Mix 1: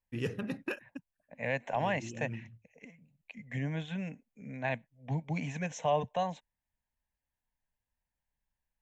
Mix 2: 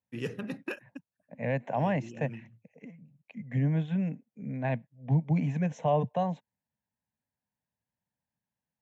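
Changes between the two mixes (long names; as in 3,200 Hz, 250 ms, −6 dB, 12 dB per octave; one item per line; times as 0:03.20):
second voice: add spectral tilt −3.5 dB per octave
master: add high-pass filter 120 Hz 24 dB per octave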